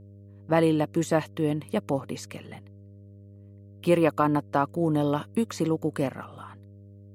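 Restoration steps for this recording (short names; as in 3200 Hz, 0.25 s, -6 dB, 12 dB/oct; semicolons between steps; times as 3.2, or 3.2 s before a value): de-hum 100.3 Hz, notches 6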